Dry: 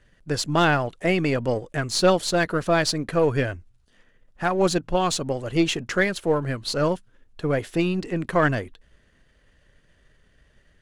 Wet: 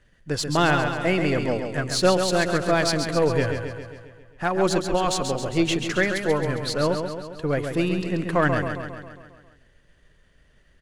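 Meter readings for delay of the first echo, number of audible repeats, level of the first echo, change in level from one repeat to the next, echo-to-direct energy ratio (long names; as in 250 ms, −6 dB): 135 ms, 7, −6.5 dB, −4.5 dB, −4.5 dB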